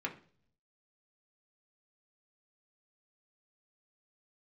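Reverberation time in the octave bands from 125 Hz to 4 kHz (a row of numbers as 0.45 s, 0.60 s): 0.95 s, 0.70 s, 0.55 s, 0.40 s, 0.40 s, 0.50 s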